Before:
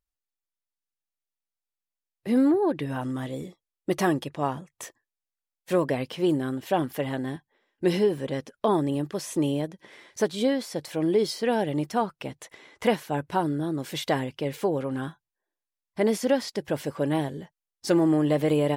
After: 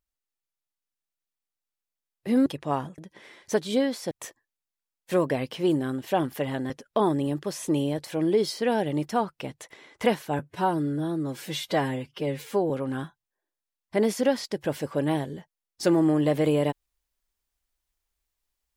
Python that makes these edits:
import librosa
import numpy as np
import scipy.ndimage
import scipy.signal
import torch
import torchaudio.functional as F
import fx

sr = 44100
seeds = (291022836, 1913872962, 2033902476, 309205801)

y = fx.edit(x, sr, fx.cut(start_s=2.46, length_s=1.72),
    fx.cut(start_s=7.29, length_s=1.09),
    fx.move(start_s=9.66, length_s=1.13, to_s=4.7),
    fx.stretch_span(start_s=13.2, length_s=1.54, factor=1.5), tone=tone)